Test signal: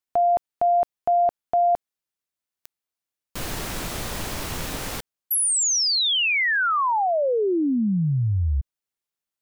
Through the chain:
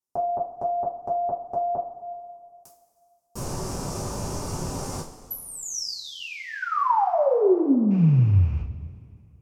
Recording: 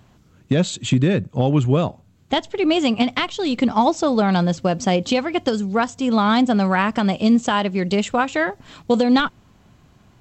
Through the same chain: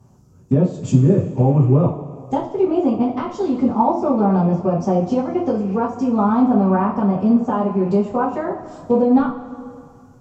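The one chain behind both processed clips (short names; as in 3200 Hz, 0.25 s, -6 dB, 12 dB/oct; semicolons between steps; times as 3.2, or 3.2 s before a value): rattling part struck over -28 dBFS, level -25 dBFS; treble ducked by the level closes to 1900 Hz, closed at -16.5 dBFS; band shelf 2500 Hz -16 dB; two-slope reverb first 0.32 s, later 2.3 s, from -18 dB, DRR -7.5 dB; gain -6.5 dB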